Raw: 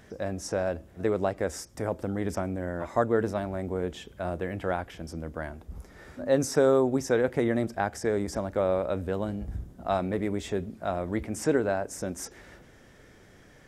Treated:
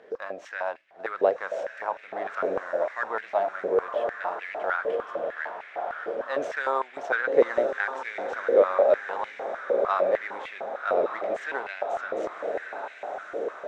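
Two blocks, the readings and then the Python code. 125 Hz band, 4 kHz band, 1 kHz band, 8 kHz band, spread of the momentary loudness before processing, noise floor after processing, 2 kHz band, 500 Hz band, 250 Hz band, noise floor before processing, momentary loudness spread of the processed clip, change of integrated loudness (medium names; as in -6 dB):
under -20 dB, no reading, +5.5 dB, under -15 dB, 12 LU, -47 dBFS, +7.5 dB, +2.5 dB, -11.0 dB, -54 dBFS, 12 LU, +1.5 dB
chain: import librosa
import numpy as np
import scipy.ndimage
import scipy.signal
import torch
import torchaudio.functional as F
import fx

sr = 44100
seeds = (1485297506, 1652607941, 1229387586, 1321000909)

y = scipy.ndimage.median_filter(x, 9, mode='constant')
y = scipy.signal.sosfilt(scipy.signal.butter(2, 4200.0, 'lowpass', fs=sr, output='sos'), y)
y = fx.echo_diffused(y, sr, ms=1153, feedback_pct=63, wet_db=-6.5)
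y = fx.filter_held_highpass(y, sr, hz=6.6, low_hz=470.0, high_hz=2200.0)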